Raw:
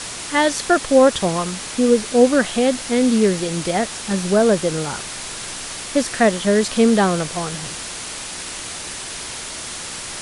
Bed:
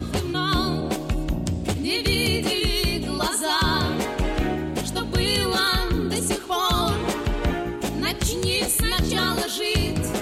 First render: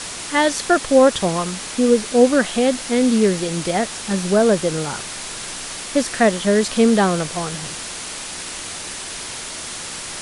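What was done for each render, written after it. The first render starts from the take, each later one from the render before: de-hum 60 Hz, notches 2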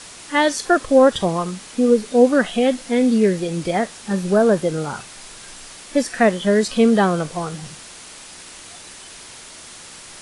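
noise print and reduce 9 dB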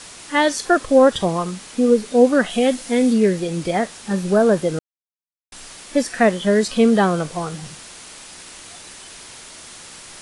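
2.5–3.13 high shelf 6300 Hz +6.5 dB; 4.79–5.52 mute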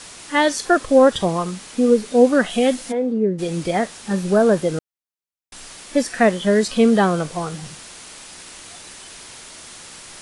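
2.91–3.38 band-pass 740 Hz -> 210 Hz, Q 1.4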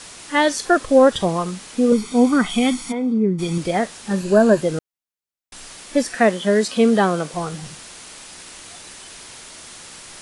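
1.92–3.58 comb 0.9 ms, depth 76%; 4.2–4.61 ripple EQ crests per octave 1.4, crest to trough 8 dB; 6.15–7.34 HPF 170 Hz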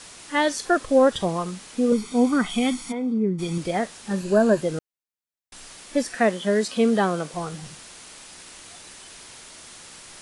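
gain -4.5 dB

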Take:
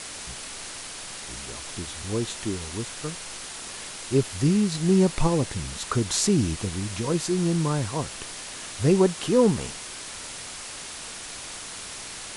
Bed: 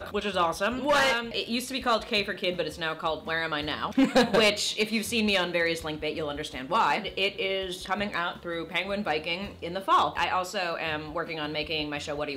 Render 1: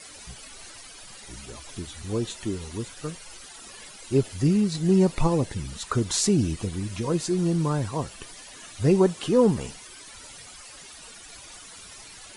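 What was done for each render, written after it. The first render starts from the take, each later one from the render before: denoiser 13 dB, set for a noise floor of -38 dBFS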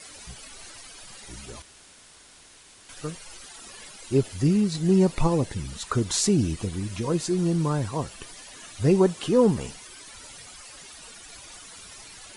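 1.62–2.89 room tone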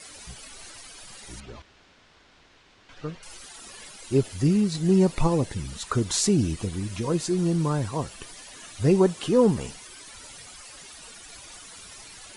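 1.4–3.23 air absorption 200 m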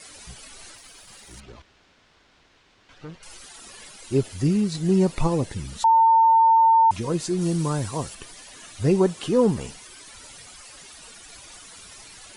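0.75–3.22 tube stage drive 33 dB, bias 0.5; 5.84–6.91 bleep 903 Hz -12.5 dBFS; 7.41–8.15 high shelf 5000 Hz +8.5 dB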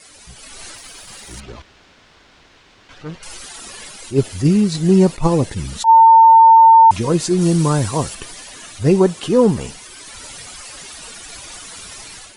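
AGC gain up to 9.5 dB; attack slew limiter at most 280 dB/s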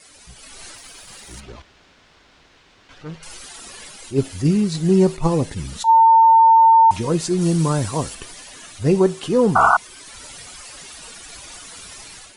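resonator 54 Hz, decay 0.34 s, harmonics odd, mix 40%; 9.55–9.77 painted sound noise 640–1500 Hz -13 dBFS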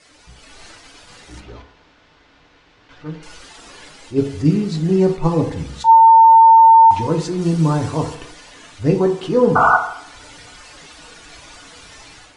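air absorption 84 m; FDN reverb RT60 0.69 s, low-frequency decay 0.8×, high-frequency decay 0.35×, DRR 4 dB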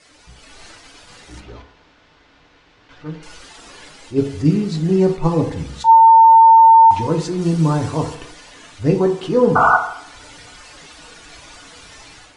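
nothing audible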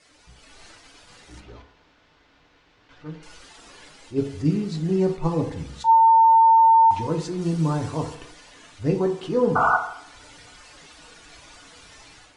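gain -6.5 dB

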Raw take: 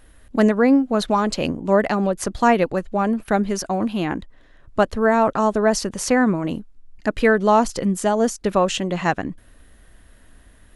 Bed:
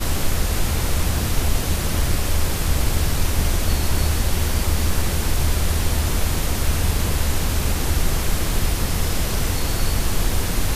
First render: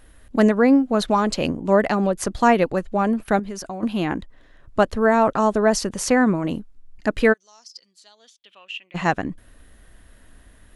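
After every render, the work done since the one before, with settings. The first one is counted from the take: 3.39–3.83 compressor 3:1, threshold -30 dBFS; 7.32–8.94 band-pass 6500 Hz -> 2400 Hz, Q 11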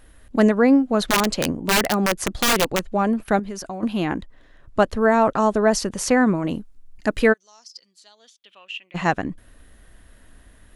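1.08–2.9 wrapped overs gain 11.5 dB; 6.59–7.23 high shelf 5300 Hz -> 7900 Hz +8 dB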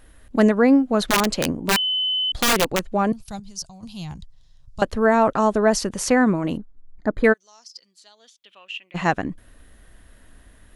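1.76–2.32 bleep 3030 Hz -19.5 dBFS; 3.12–4.82 EQ curve 150 Hz 0 dB, 300 Hz -25 dB, 590 Hz -20 dB, 850 Hz -13 dB, 1700 Hz -23 dB, 5000 Hz +6 dB, 12000 Hz -3 dB; 6.57–7.24 running mean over 16 samples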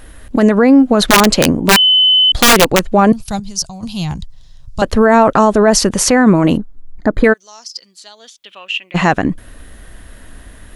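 maximiser +13 dB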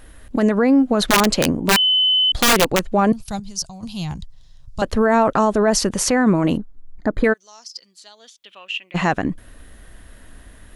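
gain -6.5 dB

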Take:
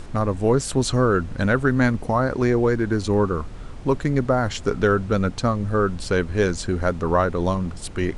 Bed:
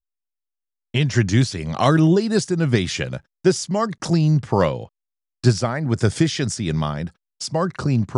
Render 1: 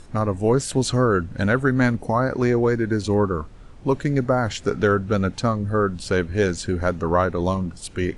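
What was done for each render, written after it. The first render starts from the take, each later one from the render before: noise print and reduce 8 dB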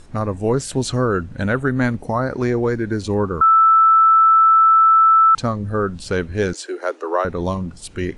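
1.35–1.92 bell 5200 Hz -12.5 dB 0.25 oct; 3.41–5.35 bleep 1320 Hz -8.5 dBFS; 6.53–7.25 steep high-pass 300 Hz 96 dB/oct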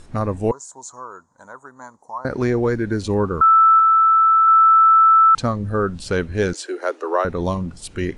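0.51–2.25 double band-pass 2600 Hz, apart 2.8 oct; 3.79–4.48 air absorption 320 m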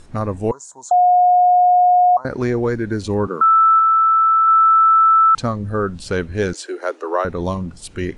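0.91–2.17 bleep 720 Hz -9 dBFS; 3.27–5.3 steep high-pass 190 Hz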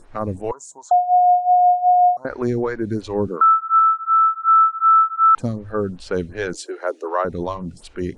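photocell phaser 2.7 Hz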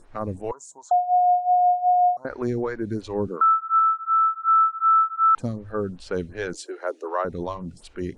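gain -4.5 dB

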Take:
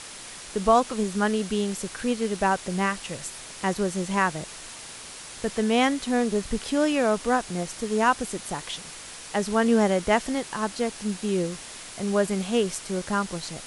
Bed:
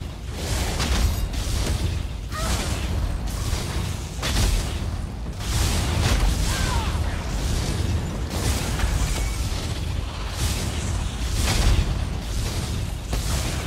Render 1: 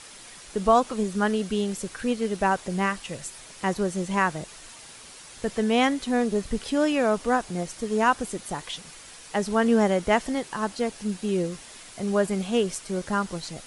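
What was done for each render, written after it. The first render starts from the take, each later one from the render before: denoiser 6 dB, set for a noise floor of -41 dBFS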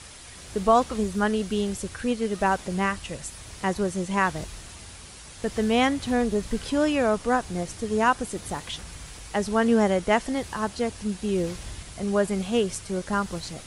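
add bed -20 dB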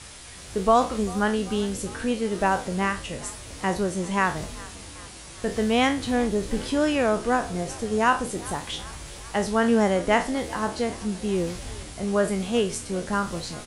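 spectral trails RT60 0.31 s; frequency-shifting echo 0.393 s, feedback 63%, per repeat +46 Hz, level -20.5 dB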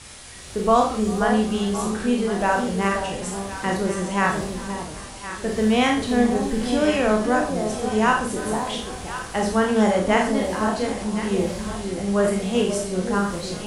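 echo with dull and thin repeats by turns 0.53 s, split 910 Hz, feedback 59%, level -6.5 dB; Schroeder reverb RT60 0.35 s, combs from 29 ms, DRR 2.5 dB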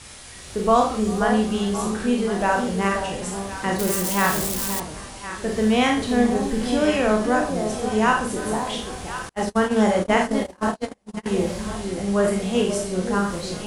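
3.79–4.8 switching spikes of -16.5 dBFS; 9.29–11.26 gate -23 dBFS, range -39 dB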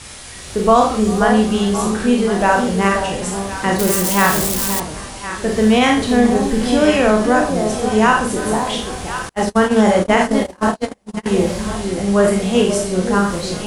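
gain +6.5 dB; limiter -2 dBFS, peak gain reduction 3 dB

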